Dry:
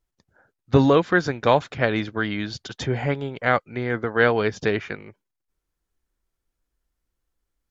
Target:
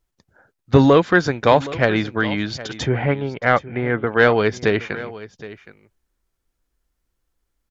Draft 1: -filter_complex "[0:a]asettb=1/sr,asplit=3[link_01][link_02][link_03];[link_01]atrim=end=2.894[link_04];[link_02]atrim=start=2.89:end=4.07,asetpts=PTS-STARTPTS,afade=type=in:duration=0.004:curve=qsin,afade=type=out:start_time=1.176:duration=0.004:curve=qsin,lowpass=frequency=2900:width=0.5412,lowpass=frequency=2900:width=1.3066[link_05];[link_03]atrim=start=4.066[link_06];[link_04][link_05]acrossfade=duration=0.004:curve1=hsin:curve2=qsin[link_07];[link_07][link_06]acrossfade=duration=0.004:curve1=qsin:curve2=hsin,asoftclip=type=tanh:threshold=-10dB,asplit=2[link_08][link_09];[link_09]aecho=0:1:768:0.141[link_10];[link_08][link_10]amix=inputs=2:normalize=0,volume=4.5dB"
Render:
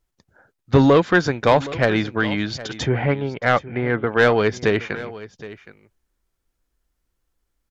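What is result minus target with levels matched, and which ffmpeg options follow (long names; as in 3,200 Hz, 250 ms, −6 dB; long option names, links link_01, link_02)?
soft clipping: distortion +9 dB
-filter_complex "[0:a]asettb=1/sr,asplit=3[link_01][link_02][link_03];[link_01]atrim=end=2.894[link_04];[link_02]atrim=start=2.89:end=4.07,asetpts=PTS-STARTPTS,afade=type=in:duration=0.004:curve=qsin,afade=type=out:start_time=1.176:duration=0.004:curve=qsin,lowpass=frequency=2900:width=0.5412,lowpass=frequency=2900:width=1.3066[link_05];[link_03]atrim=start=4.066[link_06];[link_04][link_05]acrossfade=duration=0.004:curve1=hsin:curve2=qsin[link_07];[link_07][link_06]acrossfade=duration=0.004:curve1=qsin:curve2=hsin,asoftclip=type=tanh:threshold=-4dB,asplit=2[link_08][link_09];[link_09]aecho=0:1:768:0.141[link_10];[link_08][link_10]amix=inputs=2:normalize=0,volume=4.5dB"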